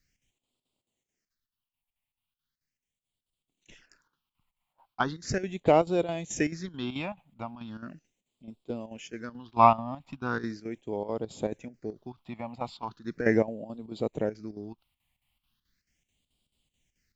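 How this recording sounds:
chopped level 4.6 Hz, depth 65%, duty 75%
phaser sweep stages 6, 0.38 Hz, lowest notch 400–1,700 Hz

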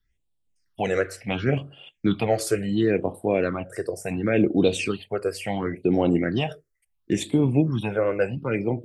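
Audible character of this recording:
phaser sweep stages 6, 0.71 Hz, lowest notch 220–1,800 Hz

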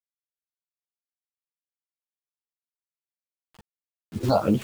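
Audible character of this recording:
phaser sweep stages 4, 2.7 Hz, lowest notch 310–1,600 Hz
a quantiser's noise floor 8 bits, dither none
chopped level 2.6 Hz, depth 65%, duty 15%
a shimmering, thickened sound

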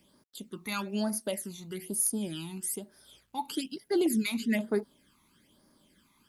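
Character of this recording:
phaser sweep stages 12, 1.1 Hz, lowest notch 510–2,900 Hz
a quantiser's noise floor 12 bits, dither none

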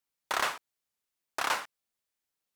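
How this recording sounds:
background noise floor −87 dBFS
spectral slope −1.5 dB per octave

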